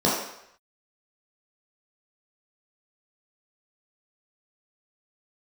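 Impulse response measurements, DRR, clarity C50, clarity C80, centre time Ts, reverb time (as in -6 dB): -6.5 dB, 2.0 dB, 5.0 dB, 53 ms, 0.75 s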